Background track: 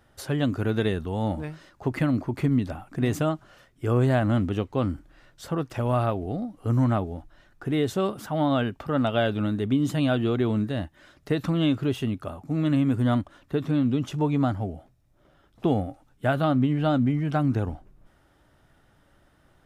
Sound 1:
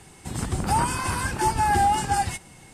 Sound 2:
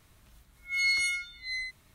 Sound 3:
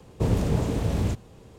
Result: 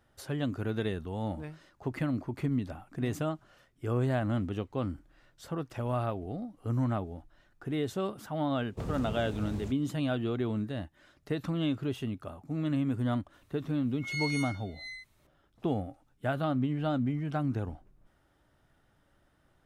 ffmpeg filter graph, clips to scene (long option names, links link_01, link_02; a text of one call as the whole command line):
ffmpeg -i bed.wav -i cue0.wav -i cue1.wav -i cue2.wav -filter_complex "[0:a]volume=-7.5dB[link_01];[3:a]atrim=end=1.58,asetpts=PTS-STARTPTS,volume=-13.5dB,afade=type=in:duration=0.004:curve=hsin,afade=type=out:start_time=1.576:duration=0.004:curve=hsin,adelay=8570[link_02];[2:a]atrim=end=1.94,asetpts=PTS-STARTPTS,volume=-8.5dB,afade=type=in:duration=0.004:curve=hsin,afade=type=out:start_time=1.936:duration=0.004:curve=hsin,adelay=13330[link_03];[link_01][link_02][link_03]amix=inputs=3:normalize=0" out.wav